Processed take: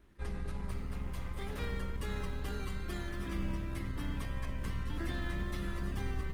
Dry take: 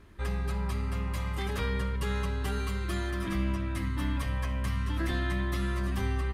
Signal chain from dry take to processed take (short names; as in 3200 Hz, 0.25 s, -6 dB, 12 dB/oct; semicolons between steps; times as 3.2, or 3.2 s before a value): octaver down 2 oct, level 0 dB; low shelf 480 Hz -4 dB; in parallel at -8 dB: sample-and-hold 28×; on the sum: wow and flutter 22 cents; Schroeder reverb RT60 0.59 s, combs from 30 ms, DRR 19 dB; gain -7.5 dB; Opus 20 kbps 48000 Hz